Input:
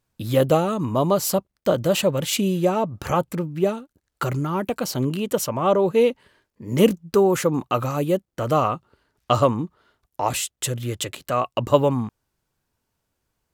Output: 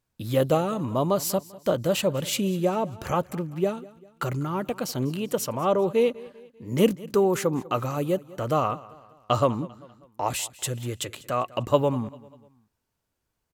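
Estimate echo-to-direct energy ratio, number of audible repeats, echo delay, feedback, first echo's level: −19.5 dB, 3, 197 ms, 46%, −20.5 dB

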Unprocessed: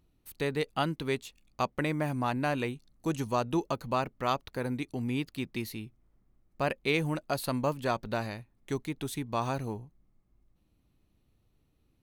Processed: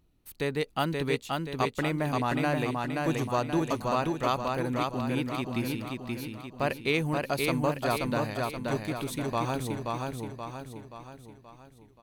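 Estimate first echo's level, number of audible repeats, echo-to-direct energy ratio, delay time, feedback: −3.0 dB, 6, −2.0 dB, 528 ms, 49%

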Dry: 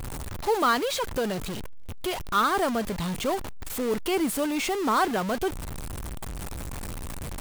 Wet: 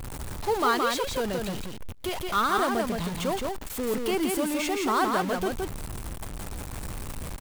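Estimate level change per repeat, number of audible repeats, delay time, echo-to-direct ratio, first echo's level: repeats not evenly spaced, 1, 169 ms, −3.5 dB, −3.5 dB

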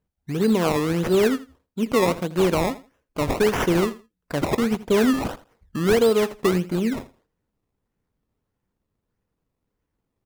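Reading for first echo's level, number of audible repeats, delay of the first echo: −17.0 dB, 2, 82 ms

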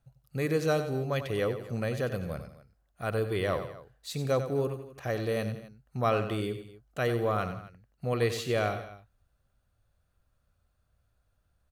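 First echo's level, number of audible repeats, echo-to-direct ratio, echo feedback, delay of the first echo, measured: −10.0 dB, 3, −9.0 dB, repeats not evenly spaced, 93 ms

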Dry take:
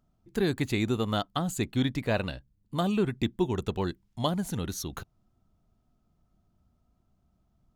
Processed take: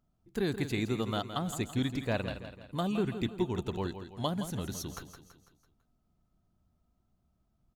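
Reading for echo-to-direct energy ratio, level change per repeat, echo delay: −9.0 dB, −6.5 dB, 166 ms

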